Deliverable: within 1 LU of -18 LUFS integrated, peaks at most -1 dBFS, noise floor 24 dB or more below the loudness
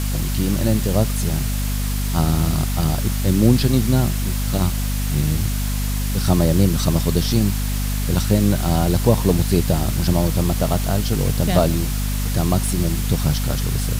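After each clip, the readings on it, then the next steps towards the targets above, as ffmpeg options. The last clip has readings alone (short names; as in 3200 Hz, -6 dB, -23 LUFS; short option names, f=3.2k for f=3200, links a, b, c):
hum 50 Hz; harmonics up to 250 Hz; hum level -19 dBFS; noise floor -22 dBFS; noise floor target -44 dBFS; loudness -20.0 LUFS; peak -2.5 dBFS; loudness target -18.0 LUFS
-> -af "bandreject=f=50:t=h:w=6,bandreject=f=100:t=h:w=6,bandreject=f=150:t=h:w=6,bandreject=f=200:t=h:w=6,bandreject=f=250:t=h:w=6"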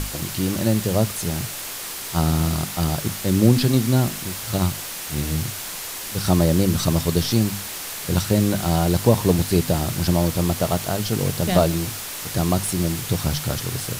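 hum none; noise floor -32 dBFS; noise floor target -46 dBFS
-> -af "afftdn=nr=14:nf=-32"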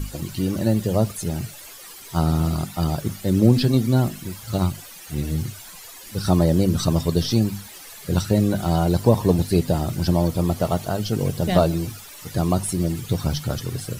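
noise floor -41 dBFS; noise floor target -46 dBFS
-> -af "afftdn=nr=6:nf=-41"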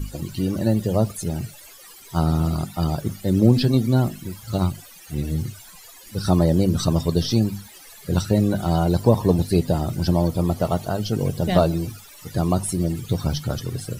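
noise floor -45 dBFS; noise floor target -46 dBFS
-> -af "afftdn=nr=6:nf=-45"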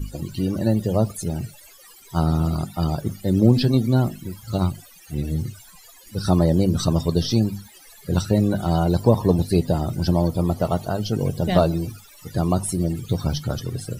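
noise floor -48 dBFS; loudness -22.0 LUFS; peak -3.0 dBFS; loudness target -18.0 LUFS
-> -af "volume=4dB,alimiter=limit=-1dB:level=0:latency=1"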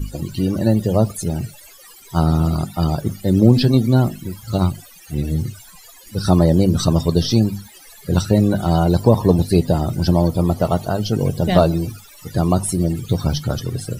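loudness -18.0 LUFS; peak -1.0 dBFS; noise floor -44 dBFS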